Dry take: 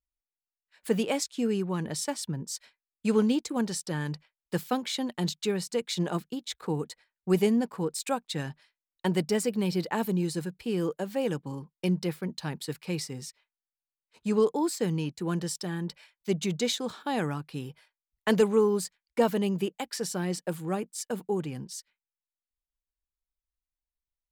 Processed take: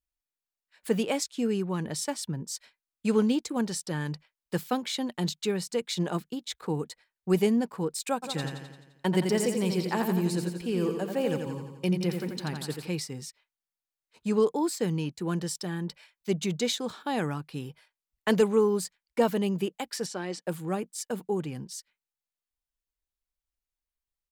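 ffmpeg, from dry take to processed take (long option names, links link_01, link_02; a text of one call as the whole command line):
ffmpeg -i in.wav -filter_complex "[0:a]asplit=3[link_01][link_02][link_03];[link_01]afade=type=out:start_time=8.22:duration=0.02[link_04];[link_02]aecho=1:1:86|172|258|344|430|516|602:0.501|0.286|0.163|0.0928|0.0529|0.0302|0.0172,afade=type=in:start_time=8.22:duration=0.02,afade=type=out:start_time=12.86:duration=0.02[link_05];[link_03]afade=type=in:start_time=12.86:duration=0.02[link_06];[link_04][link_05][link_06]amix=inputs=3:normalize=0,asettb=1/sr,asplit=3[link_07][link_08][link_09];[link_07]atrim=end=20.064[link_10];[link_08]atrim=start=20.06:end=20.46,asetpts=PTS-STARTPTS,afade=type=in:duration=0.004:curve=qsin,afade=type=out:start_time=0.396:duration=0.004:curve=qsin,highpass=290,lowpass=6100[link_11];[link_09]atrim=start=20.456[link_12];[link_10][link_11]acrossfade=duration=0.004:curve1=hsin:curve2=qsin[link_13];[link_13][link_12]acrossfade=duration=0.004:curve1=qsin:curve2=hsin" out.wav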